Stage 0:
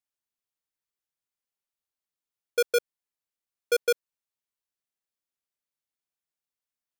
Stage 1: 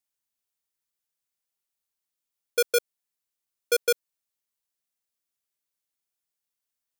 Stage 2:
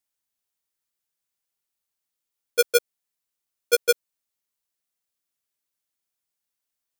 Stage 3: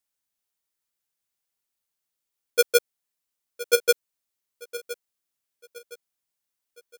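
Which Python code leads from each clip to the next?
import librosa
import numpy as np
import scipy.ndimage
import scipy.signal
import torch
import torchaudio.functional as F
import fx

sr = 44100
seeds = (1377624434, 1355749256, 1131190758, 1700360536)

y1 = fx.high_shelf(x, sr, hz=4200.0, db=7.0)
y2 = fx.level_steps(y1, sr, step_db=10)
y2 = y2 * 10.0 ** (6.0 / 20.0)
y3 = fx.echo_feedback(y2, sr, ms=1015, feedback_pct=37, wet_db=-15.5)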